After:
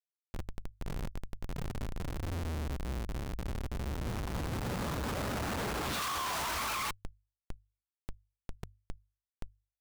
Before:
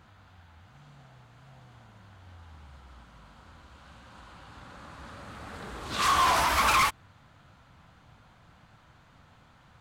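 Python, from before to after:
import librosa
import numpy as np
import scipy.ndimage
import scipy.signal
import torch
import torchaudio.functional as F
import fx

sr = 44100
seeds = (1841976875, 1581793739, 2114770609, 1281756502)

y = fx.schmitt(x, sr, flips_db=-46.0)
y = fx.hum_notches(y, sr, base_hz=50, count=2)
y = y * librosa.db_to_amplitude(-1.0)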